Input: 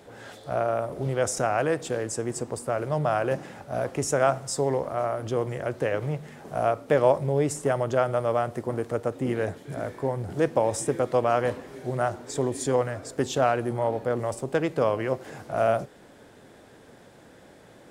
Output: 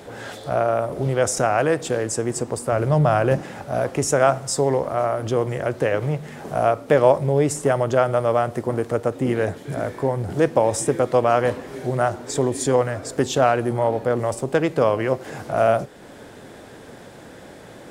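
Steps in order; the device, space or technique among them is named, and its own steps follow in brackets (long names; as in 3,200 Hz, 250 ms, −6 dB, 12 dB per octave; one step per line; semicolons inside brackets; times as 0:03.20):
parallel compression (in parallel at −2 dB: downward compressor, threshold −40 dBFS, peak gain reduction 23 dB)
0:02.72–0:03.41: on the sum: low-shelf EQ 160 Hz +10.5 dB
level +4.5 dB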